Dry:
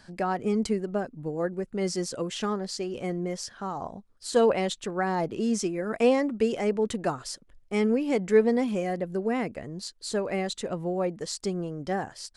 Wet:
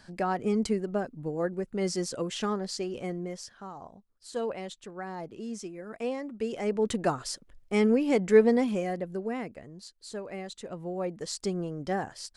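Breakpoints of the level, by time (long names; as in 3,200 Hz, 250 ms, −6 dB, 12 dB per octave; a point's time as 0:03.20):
0:02.84 −1 dB
0:03.89 −11 dB
0:06.23 −11 dB
0:06.92 +1 dB
0:08.50 +1 dB
0:09.78 −9.5 dB
0:10.52 −9.5 dB
0:11.39 −1 dB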